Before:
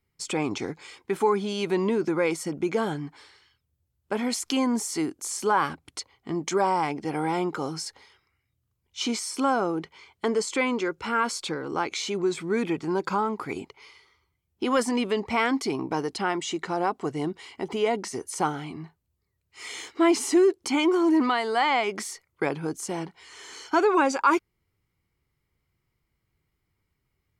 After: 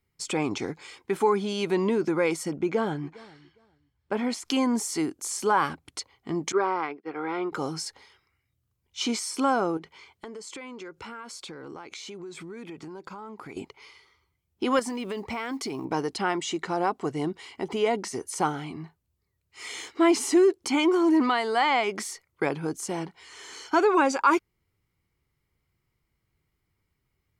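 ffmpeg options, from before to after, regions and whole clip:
-filter_complex "[0:a]asettb=1/sr,asplit=3[s0][s1][s2];[s0]atrim=end=2.564[s3];[s1]atrim=start=2.56:end=4.45,asetpts=PTS-STARTPTS,afade=t=in:d=0.004:c=qsin,afade=t=out:st=1.886:d=0.004:c=qsin,lowpass=f=3100:p=1,aecho=1:1:408|816:0.0794|0.0143,atrim=end_sample=83349[s4];[s2]atrim=start=4.446[s5];[s3][s4]acrossfade=d=0.004:c1=hsin:c2=qsin[s6];[s6][s5]acrossfade=d=0.004:c1=qsin:c2=hsin,asettb=1/sr,asplit=3[s7][s8][s9];[s7]atrim=end=6.524[s10];[s8]atrim=start=6.52:end=7.52,asetpts=PTS-STARTPTS,afade=t=in:d=0.004:c=qsin,afade=t=out:st=0.996:d=0.004:c=qsin,agate=range=0.0224:threshold=0.0501:ratio=3:release=100:detection=peak,highpass=340,equalizer=f=410:t=q:w=4:g=4,equalizer=f=600:t=q:w=4:g=-6,equalizer=f=850:t=q:w=4:g=-7,equalizer=f=1300:t=q:w=4:g=5,equalizer=f=3000:t=q:w=4:g=-6,lowpass=f=3700:w=0.5412,lowpass=f=3700:w=1.3066[s11];[s9]atrim=start=7.516[s12];[s10][s11]acrossfade=d=0.004:c1=hsin:c2=qsin[s13];[s13][s12]acrossfade=d=0.004:c1=qsin:c2=hsin,asettb=1/sr,asplit=3[s14][s15][s16];[s14]atrim=end=9.774[s17];[s15]atrim=start=9.77:end=13.57,asetpts=PTS-STARTPTS,afade=t=in:d=0.004:c=qsin,afade=t=out:st=3.796:d=0.004:c=qsin,highpass=49,acompressor=threshold=0.0141:ratio=10:attack=3.2:release=140:knee=1:detection=peak[s18];[s16]atrim=start=13.566[s19];[s17][s18]acrossfade=d=0.004:c1=hsin:c2=qsin[s20];[s20][s19]acrossfade=d=0.004:c1=qsin:c2=hsin,asettb=1/sr,asplit=3[s21][s22][s23];[s21]atrim=end=14.794[s24];[s22]atrim=start=14.79:end=15.85,asetpts=PTS-STARTPTS,afade=t=in:d=0.004:c=qsin,afade=t=out:st=1.056:d=0.004:c=qsin,acrusher=bits=9:mode=log:mix=0:aa=0.000001,acompressor=threshold=0.0355:ratio=5:attack=3.2:release=140:knee=1:detection=peak[s25];[s23]atrim=start=15.846[s26];[s24][s25]acrossfade=d=0.004:c1=hsin:c2=qsin[s27];[s27][s26]acrossfade=d=0.004:c1=qsin:c2=hsin"

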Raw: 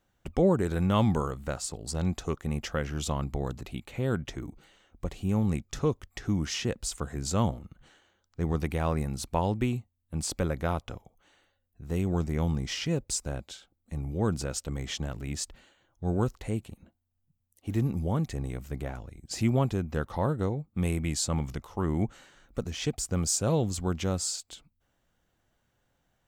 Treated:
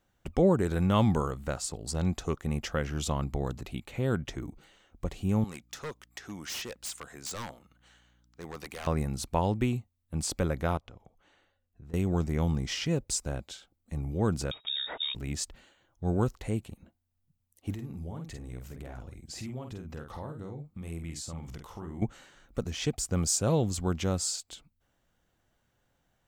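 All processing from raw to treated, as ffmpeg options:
-filter_complex "[0:a]asettb=1/sr,asplit=3[s0][s1][s2];[s0]atrim=end=5.444[s3];[s1]atrim=start=5.44:end=8.87,asetpts=PTS-STARTPTS,afade=t=in:d=0.004:c=qsin,afade=t=out:st=3.426:d=0.004:c=qsin,highpass=f=1000:p=1,aeval=exprs='val(0)+0.000562*(sin(2*PI*60*n/s)+sin(2*PI*2*60*n/s)/2+sin(2*PI*3*60*n/s)/3+sin(2*PI*4*60*n/s)/4+sin(2*PI*5*60*n/s)/5)':c=same,aeval=exprs='0.0266*(abs(mod(val(0)/0.0266+3,4)-2)-1)':c=same[s4];[s2]atrim=start=8.866[s5];[s3][s4]acrossfade=d=0.004:c1=hsin:c2=qsin[s6];[s6][s5]acrossfade=d=0.004:c1=qsin:c2=hsin,asettb=1/sr,asplit=3[s7][s8][s9];[s7]atrim=end=10.774[s10];[s8]atrim=start=10.77:end=11.94,asetpts=PTS-STARTPTS,afade=t=in:d=0.004:c=qsin,afade=t=out:st=1.166:d=0.004:c=qsin,lowpass=f=3400:p=1,acompressor=threshold=0.00501:ratio=5:attack=3.2:release=140:knee=1:detection=peak[s11];[s9]atrim=start=11.936[s12];[s10][s11]acrossfade=d=0.004:c1=hsin:c2=qsin[s13];[s13][s12]acrossfade=d=0.004:c1=qsin:c2=hsin,asettb=1/sr,asplit=3[s14][s15][s16];[s14]atrim=end=14.514[s17];[s15]atrim=start=14.51:end=15.15,asetpts=PTS-STARTPTS,afade=t=in:d=0.004:c=qsin,afade=t=out:st=0.636:d=0.004:c=qsin,bandreject=f=700:w=6.7,lowpass=f=3200:t=q:w=0.5098,lowpass=f=3200:t=q:w=0.6013,lowpass=f=3200:t=q:w=0.9,lowpass=f=3200:t=q:w=2.563,afreqshift=-3800[s18];[s16]atrim=start=15.146[s19];[s17][s18]acrossfade=d=0.004:c1=hsin:c2=qsin[s20];[s20][s19]acrossfade=d=0.004:c1=qsin:c2=hsin,asettb=1/sr,asplit=3[s21][s22][s23];[s21]atrim=end=17.744[s24];[s22]atrim=start=17.74:end=22.02,asetpts=PTS-STARTPTS,afade=t=in:d=0.004:c=qsin,afade=t=out:st=4.276:d=0.004:c=qsin,acompressor=threshold=0.00891:ratio=3:attack=3.2:release=140:knee=1:detection=peak,asplit=2[s25][s26];[s26]adelay=48,volume=0.531[s27];[s25][s27]amix=inputs=2:normalize=0,atrim=end_sample=188748[s28];[s23]atrim=start=22.016[s29];[s24][s28]acrossfade=d=0.004:c1=hsin:c2=qsin[s30];[s30][s29]acrossfade=d=0.004:c1=qsin:c2=hsin"

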